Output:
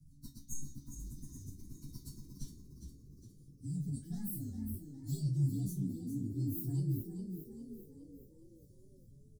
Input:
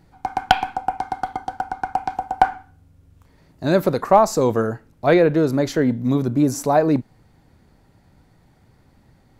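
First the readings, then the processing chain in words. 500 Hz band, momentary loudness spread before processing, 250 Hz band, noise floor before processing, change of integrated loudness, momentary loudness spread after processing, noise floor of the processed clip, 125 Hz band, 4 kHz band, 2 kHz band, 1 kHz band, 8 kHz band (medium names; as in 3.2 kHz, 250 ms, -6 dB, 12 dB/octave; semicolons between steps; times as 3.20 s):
-36.5 dB, 12 LU, -18.5 dB, -56 dBFS, -20.0 dB, 19 LU, -60 dBFS, -9.0 dB, under -25 dB, under -40 dB, under -40 dB, -14.0 dB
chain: frequency axis rescaled in octaves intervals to 127%; elliptic band-stop 220–5500 Hz, stop band 40 dB; reverse; compression, threshold -36 dBFS, peak gain reduction 14.5 dB; reverse; flange 0.3 Hz, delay 1.6 ms, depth 8.9 ms, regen -82%; rotary cabinet horn 6.7 Hz, later 0.9 Hz, at 0.69 s; feedback comb 140 Hz, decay 0.22 s, harmonics all, mix 90%; spectral replace 0.49–1.45 s, 2–6.4 kHz; frequency-shifting echo 409 ms, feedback 49%, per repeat +48 Hz, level -9 dB; trim +15 dB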